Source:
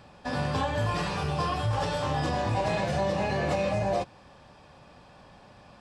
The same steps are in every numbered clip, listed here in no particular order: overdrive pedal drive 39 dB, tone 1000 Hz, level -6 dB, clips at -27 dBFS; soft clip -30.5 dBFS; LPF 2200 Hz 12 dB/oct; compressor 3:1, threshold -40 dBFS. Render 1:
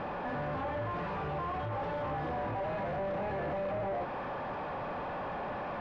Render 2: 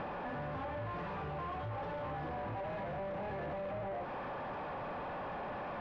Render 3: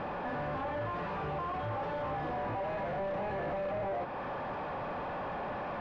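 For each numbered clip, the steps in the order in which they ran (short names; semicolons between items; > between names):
soft clip > compressor > overdrive pedal > LPF; overdrive pedal > LPF > soft clip > compressor; compressor > soft clip > overdrive pedal > LPF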